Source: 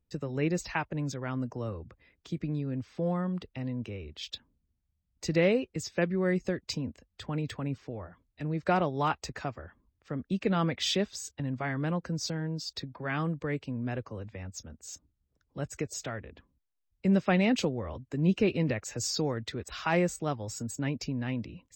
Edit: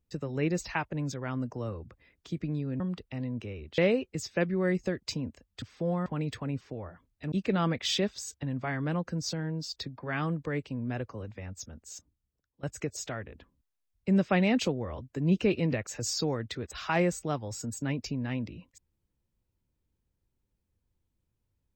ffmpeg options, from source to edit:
ffmpeg -i in.wav -filter_complex "[0:a]asplit=7[link_01][link_02][link_03][link_04][link_05][link_06][link_07];[link_01]atrim=end=2.802[link_08];[link_02]atrim=start=3.238:end=4.222[link_09];[link_03]atrim=start=5.388:end=7.232[link_10];[link_04]atrim=start=2.798:end=3.242[link_11];[link_05]atrim=start=7.228:end=8.492[link_12];[link_06]atrim=start=10.288:end=15.6,asetpts=PTS-STARTPTS,afade=type=out:start_time=4.502:duration=0.81:silence=0.1[link_13];[link_07]atrim=start=15.6,asetpts=PTS-STARTPTS,afade=type=in:duration=0.004:curve=hsin:silence=0.1[link_14];[link_08][link_09]acrossfade=duration=0.004:curve1=hsin:curve2=hsin[link_15];[link_15][link_10]acrossfade=duration=0.004:curve1=hsin:curve2=hsin[link_16];[link_16][link_11]acrossfade=duration=0.004:curve1=hsin:curve2=hsin[link_17];[link_17][link_12]acrossfade=duration=0.004:curve1=hsin:curve2=hsin[link_18];[link_13][link_14]concat=n=2:v=0:a=1[link_19];[link_18][link_19]acrossfade=duration=0.004:curve1=hsin:curve2=hsin" out.wav

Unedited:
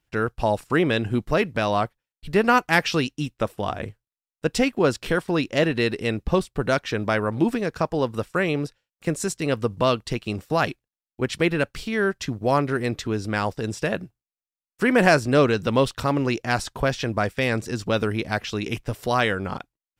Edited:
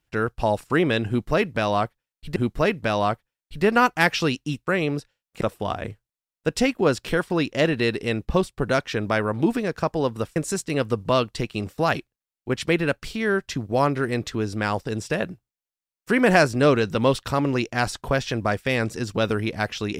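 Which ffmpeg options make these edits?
ffmpeg -i in.wav -filter_complex "[0:a]asplit=5[link_01][link_02][link_03][link_04][link_05];[link_01]atrim=end=2.362[link_06];[link_02]atrim=start=1.078:end=3.392[link_07];[link_03]atrim=start=8.338:end=9.082[link_08];[link_04]atrim=start=3.388:end=8.342[link_09];[link_05]atrim=start=9.078[link_10];[link_06][link_07]acrossfade=duration=0.004:curve1=hsin:curve2=hsin[link_11];[link_11][link_08]acrossfade=duration=0.004:curve1=hsin:curve2=hsin[link_12];[link_12][link_09]acrossfade=duration=0.004:curve1=hsin:curve2=hsin[link_13];[link_13][link_10]acrossfade=duration=0.004:curve1=hsin:curve2=hsin" out.wav

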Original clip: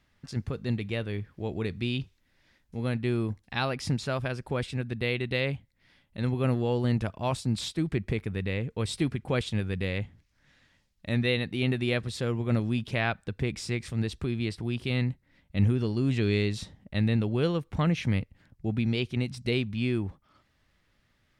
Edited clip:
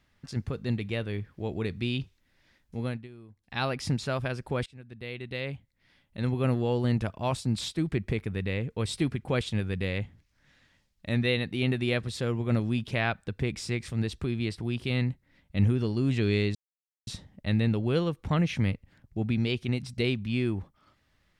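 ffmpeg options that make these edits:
ffmpeg -i in.wav -filter_complex "[0:a]asplit=5[link_01][link_02][link_03][link_04][link_05];[link_01]atrim=end=3.08,asetpts=PTS-STARTPTS,afade=type=out:start_time=2.8:duration=0.28:silence=0.0944061[link_06];[link_02]atrim=start=3.08:end=3.36,asetpts=PTS-STARTPTS,volume=-20.5dB[link_07];[link_03]atrim=start=3.36:end=4.66,asetpts=PTS-STARTPTS,afade=type=in:duration=0.28:silence=0.0944061,afade=type=out:start_time=1.296:duration=0.004:curve=hsin:silence=0.0891251[link_08];[link_04]atrim=start=4.66:end=16.55,asetpts=PTS-STARTPTS,afade=type=in:duration=1.64:silence=0.0891251,afade=type=out:start_time=11.886:duration=0.004:curve=hsin,apad=pad_dur=0.52[link_09];[link_05]atrim=start=16.55,asetpts=PTS-STARTPTS,afade=type=in:duration=0.004:curve=hsin[link_10];[link_06][link_07][link_08][link_09][link_10]concat=n=5:v=0:a=1" out.wav

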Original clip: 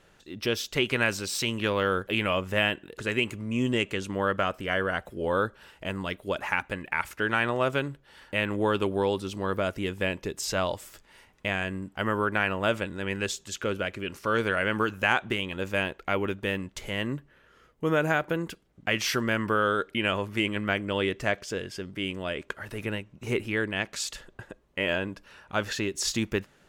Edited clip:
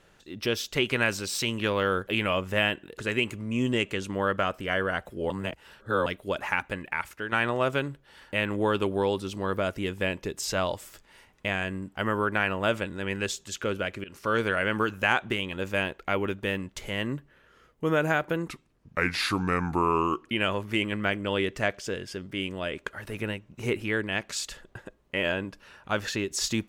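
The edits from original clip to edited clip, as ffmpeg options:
ffmpeg -i in.wav -filter_complex "[0:a]asplit=7[link_01][link_02][link_03][link_04][link_05][link_06][link_07];[link_01]atrim=end=5.302[link_08];[link_02]atrim=start=5.298:end=6.062,asetpts=PTS-STARTPTS,areverse[link_09];[link_03]atrim=start=6.058:end=7.32,asetpts=PTS-STARTPTS,afade=type=out:start_time=0.732:duration=0.53:silence=0.375837[link_10];[link_04]atrim=start=7.32:end=14.04,asetpts=PTS-STARTPTS,afade=type=in:duration=0.004:curve=hsin:silence=0.375837,afade=type=out:start_time=6.716:duration=0.004:curve=hsin:silence=0.1[link_11];[link_05]atrim=start=14.04:end=18.484,asetpts=PTS-STARTPTS,afade=type=in:duration=0.27:curve=qsin:silence=0.1[link_12];[link_06]atrim=start=18.48:end=19.93,asetpts=PTS-STARTPTS,asetrate=35280,aresample=44100,atrim=end_sample=79931,asetpts=PTS-STARTPTS[link_13];[link_07]atrim=start=19.926[link_14];[link_08][link_09]acrossfade=duration=0.004:curve1=hsin:curve2=hsin[link_15];[link_10][link_11][link_12]concat=n=3:v=0:a=1[link_16];[link_15][link_16]acrossfade=duration=0.004:curve1=hsin:curve2=hsin[link_17];[link_17][link_13]acrossfade=duration=0.004:curve1=hsin:curve2=hsin[link_18];[link_18][link_14]acrossfade=duration=0.004:curve1=hsin:curve2=hsin" out.wav

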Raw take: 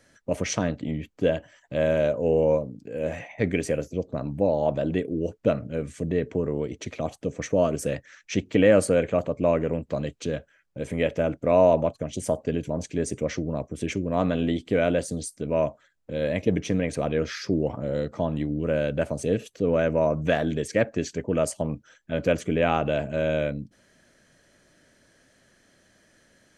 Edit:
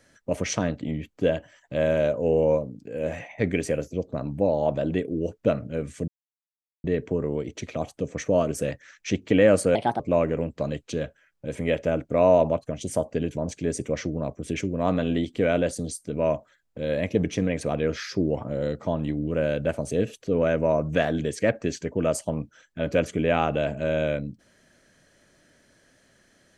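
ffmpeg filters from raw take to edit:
ffmpeg -i in.wav -filter_complex "[0:a]asplit=4[link_01][link_02][link_03][link_04];[link_01]atrim=end=6.08,asetpts=PTS-STARTPTS,afade=type=out:start_time=6.076:duration=0.004:curve=hsin,apad=pad_dur=0.76[link_05];[link_02]atrim=start=6.08:end=8.994,asetpts=PTS-STARTPTS,afade=type=in:duration=0.004:curve=hsin[link_06];[link_03]atrim=start=8.99:end=9.32,asetpts=PTS-STARTPTS,asetrate=59094,aresample=44100,atrim=end_sample=10860,asetpts=PTS-STARTPTS[link_07];[link_04]atrim=start=9.316[link_08];[link_05][link_06]concat=n=2:v=0:a=1[link_09];[link_09][link_07]acrossfade=duration=0.004:curve1=hsin:curve2=hsin[link_10];[link_10][link_08]acrossfade=duration=0.004:curve1=hsin:curve2=hsin" out.wav

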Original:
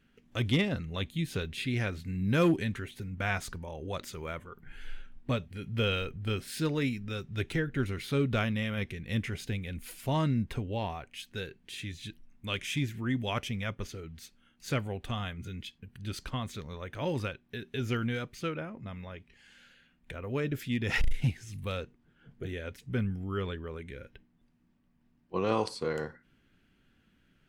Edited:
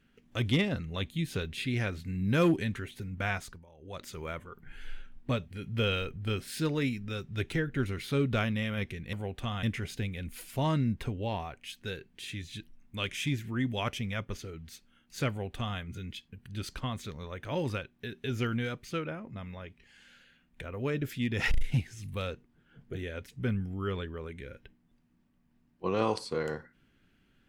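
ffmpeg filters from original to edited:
ffmpeg -i in.wav -filter_complex "[0:a]asplit=5[link_01][link_02][link_03][link_04][link_05];[link_01]atrim=end=3.66,asetpts=PTS-STARTPTS,afade=type=out:start_time=3.25:duration=0.41:silence=0.158489[link_06];[link_02]atrim=start=3.66:end=3.77,asetpts=PTS-STARTPTS,volume=-16dB[link_07];[link_03]atrim=start=3.77:end=9.132,asetpts=PTS-STARTPTS,afade=type=in:duration=0.41:silence=0.158489[link_08];[link_04]atrim=start=14.788:end=15.292[link_09];[link_05]atrim=start=9.128[link_10];[link_06][link_07][link_08]concat=n=3:v=0:a=1[link_11];[link_11][link_09]acrossfade=duration=0.004:curve1=hsin:curve2=hsin[link_12];[link_12][link_10]acrossfade=duration=0.004:curve1=hsin:curve2=hsin" out.wav

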